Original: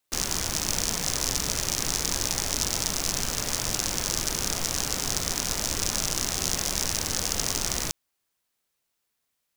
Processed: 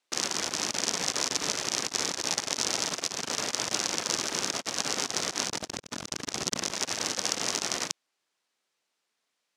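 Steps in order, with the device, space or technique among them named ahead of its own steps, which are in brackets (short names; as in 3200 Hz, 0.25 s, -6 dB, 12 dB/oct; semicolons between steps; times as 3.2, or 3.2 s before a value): 5.47–6.71 low shelf 250 Hz +8.5 dB; public-address speaker with an overloaded transformer (core saturation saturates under 630 Hz; BPF 250–6400 Hz); gain +3 dB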